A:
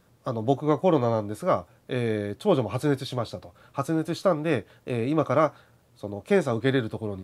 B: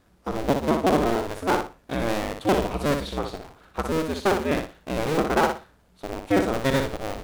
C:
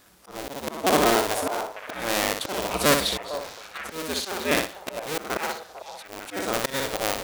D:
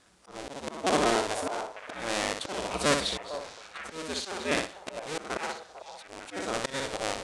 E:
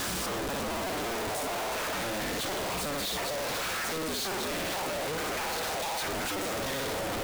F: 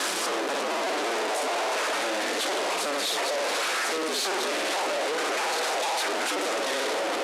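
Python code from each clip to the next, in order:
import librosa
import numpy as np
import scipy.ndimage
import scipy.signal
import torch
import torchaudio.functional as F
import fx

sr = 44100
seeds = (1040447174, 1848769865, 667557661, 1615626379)

y1 = fx.cycle_switch(x, sr, every=2, mode='inverted')
y1 = fx.high_shelf(y1, sr, hz=7000.0, db=-4.5)
y1 = fx.echo_feedback(y1, sr, ms=60, feedback_pct=24, wet_db=-6)
y2 = fx.auto_swell(y1, sr, attack_ms=362.0)
y2 = fx.tilt_eq(y2, sr, slope=3.0)
y2 = fx.echo_stepped(y2, sr, ms=449, hz=710.0, octaves=1.4, feedback_pct=70, wet_db=-8.0)
y2 = y2 * librosa.db_to_amplitude(6.0)
y3 = scipy.signal.sosfilt(scipy.signal.butter(6, 9600.0, 'lowpass', fs=sr, output='sos'), y2)
y3 = y3 * librosa.db_to_amplitude(-5.0)
y4 = np.sign(y3) * np.sqrt(np.mean(np.square(y3)))
y5 = fx.cvsd(y4, sr, bps=64000)
y5 = scipy.signal.sosfilt(scipy.signal.butter(4, 310.0, 'highpass', fs=sr, output='sos'), y5)
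y5 = y5 * librosa.db_to_amplitude(6.0)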